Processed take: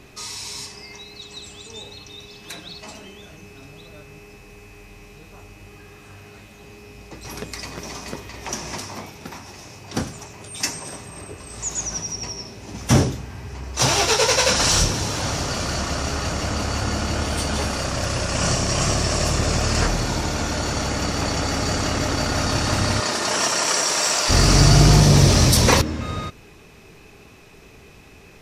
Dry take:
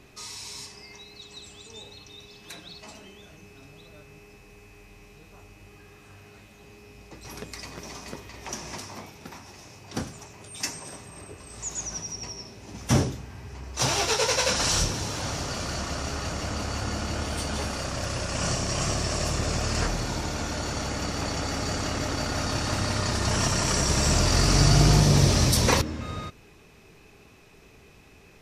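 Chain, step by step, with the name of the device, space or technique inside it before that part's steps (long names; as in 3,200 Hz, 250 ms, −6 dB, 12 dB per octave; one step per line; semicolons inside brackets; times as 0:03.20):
parallel distortion (in parallel at −8 dB: hard clipping −17.5 dBFS, distortion −13 dB)
0:22.99–0:24.28: on the sum: high-pass filter 280 Hz → 710 Hz 12 dB per octave
level +3.5 dB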